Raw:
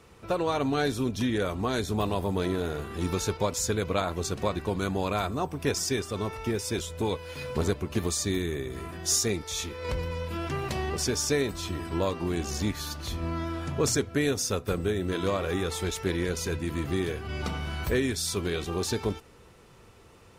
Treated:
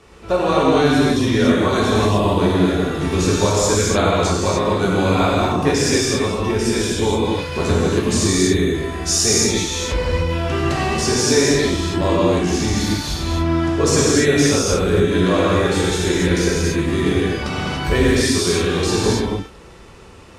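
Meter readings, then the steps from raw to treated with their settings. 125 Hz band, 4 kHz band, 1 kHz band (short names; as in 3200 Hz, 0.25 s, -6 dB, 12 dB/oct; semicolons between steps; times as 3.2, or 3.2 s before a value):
+11.5 dB, +12.0 dB, +12.0 dB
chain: LPF 9100 Hz 12 dB/oct; non-linear reverb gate 0.32 s flat, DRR -6.5 dB; gain +5 dB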